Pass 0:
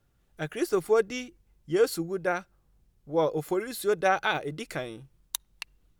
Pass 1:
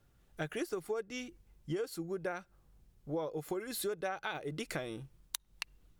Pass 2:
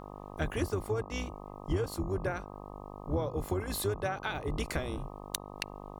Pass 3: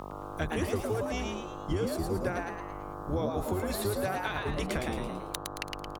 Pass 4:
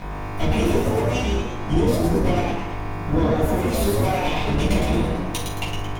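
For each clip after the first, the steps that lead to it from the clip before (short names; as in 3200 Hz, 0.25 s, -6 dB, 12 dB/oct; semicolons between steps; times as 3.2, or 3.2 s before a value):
compressor 10:1, threshold -35 dBFS, peak gain reduction 18 dB; gain +1 dB
octaver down 2 oct, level +4 dB; buzz 50 Hz, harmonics 25, -49 dBFS -1 dB/oct; gain +3 dB
frequency-shifting echo 0.111 s, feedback 43%, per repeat +150 Hz, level -3.5 dB; three-band squash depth 40%
minimum comb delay 0.31 ms; reverb RT60 0.50 s, pre-delay 4 ms, DRR -7.5 dB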